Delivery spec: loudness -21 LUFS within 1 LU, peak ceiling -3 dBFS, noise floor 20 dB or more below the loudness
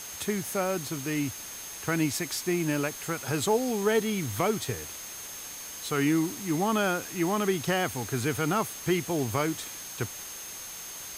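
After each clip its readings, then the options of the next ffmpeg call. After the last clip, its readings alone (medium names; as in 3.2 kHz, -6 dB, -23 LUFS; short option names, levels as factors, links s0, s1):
steady tone 6.4 kHz; tone level -42 dBFS; noise floor -41 dBFS; noise floor target -50 dBFS; loudness -29.5 LUFS; peak level -13.0 dBFS; loudness target -21.0 LUFS
-> -af "bandreject=f=6400:w=30"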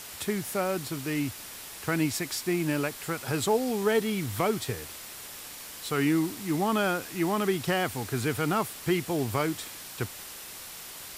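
steady tone not found; noise floor -43 dBFS; noise floor target -49 dBFS
-> -af "afftdn=nr=6:nf=-43"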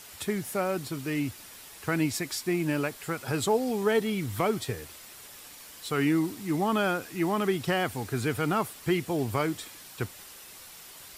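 noise floor -48 dBFS; noise floor target -50 dBFS
-> -af "afftdn=nr=6:nf=-48"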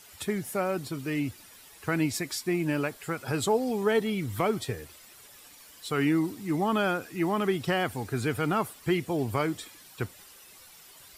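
noise floor -52 dBFS; loudness -29.5 LUFS; peak level -13.5 dBFS; loudness target -21.0 LUFS
-> -af "volume=2.66"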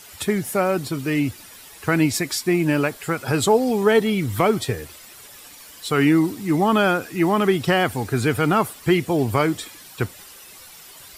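loudness -21.0 LUFS; peak level -5.0 dBFS; noise floor -44 dBFS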